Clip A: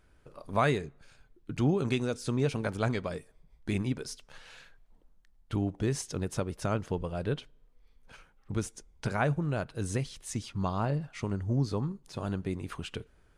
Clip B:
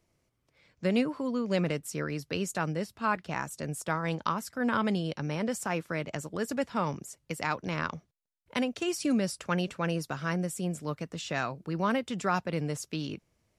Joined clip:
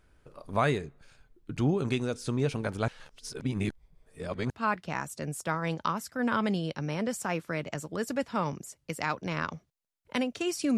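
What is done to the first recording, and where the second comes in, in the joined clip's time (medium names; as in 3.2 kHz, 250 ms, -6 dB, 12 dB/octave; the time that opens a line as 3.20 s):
clip A
2.88–4.50 s: reverse
4.50 s: go over to clip B from 2.91 s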